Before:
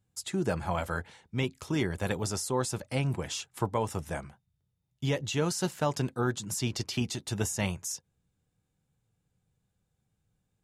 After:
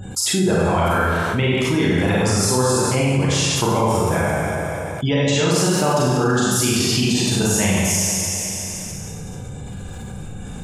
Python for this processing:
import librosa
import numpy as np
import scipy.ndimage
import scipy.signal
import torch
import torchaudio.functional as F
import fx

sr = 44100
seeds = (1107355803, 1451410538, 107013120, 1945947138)

y = fx.spec_gate(x, sr, threshold_db=-30, keep='strong')
y = fx.hum_notches(y, sr, base_hz=60, count=2)
y = fx.rev_schroeder(y, sr, rt60_s=1.4, comb_ms=32, drr_db=-6.5)
y = fx.env_flatten(y, sr, amount_pct=70)
y = y * librosa.db_to_amplitude(3.5)